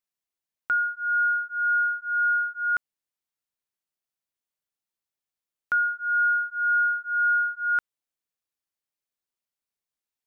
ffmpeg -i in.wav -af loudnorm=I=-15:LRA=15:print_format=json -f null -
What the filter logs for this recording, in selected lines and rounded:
"input_i" : "-24.1",
"input_tp" : "-17.8",
"input_lra" : "7.9",
"input_thresh" : "-34.2",